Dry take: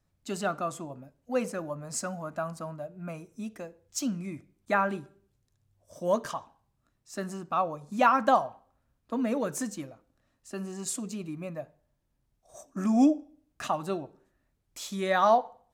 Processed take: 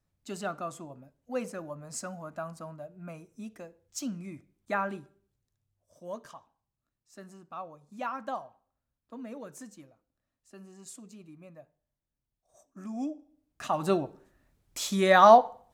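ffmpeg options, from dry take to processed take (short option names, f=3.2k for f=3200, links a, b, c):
-af "volume=14.5dB,afade=t=out:st=4.88:d=1.13:silence=0.375837,afade=t=in:st=13.1:d=0.57:silence=0.316228,afade=t=in:st=13.67:d=0.22:silence=0.354813"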